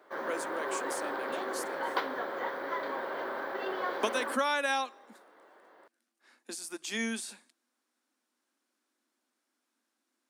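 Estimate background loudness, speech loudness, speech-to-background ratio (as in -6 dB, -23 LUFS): -35.5 LUFS, -35.0 LUFS, 0.5 dB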